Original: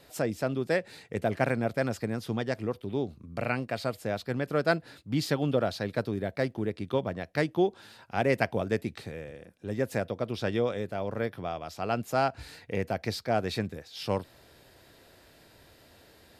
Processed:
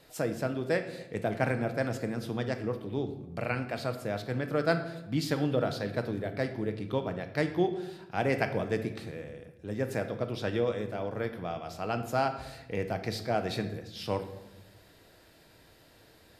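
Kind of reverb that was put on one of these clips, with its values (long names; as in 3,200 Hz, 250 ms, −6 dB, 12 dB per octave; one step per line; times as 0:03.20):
rectangular room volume 400 cubic metres, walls mixed, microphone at 0.56 metres
level −2.5 dB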